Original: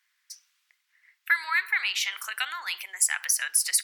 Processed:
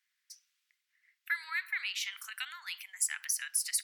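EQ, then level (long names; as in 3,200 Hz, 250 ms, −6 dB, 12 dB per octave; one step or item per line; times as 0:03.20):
high-pass filter 1,500 Hz 12 dB per octave
−8.0 dB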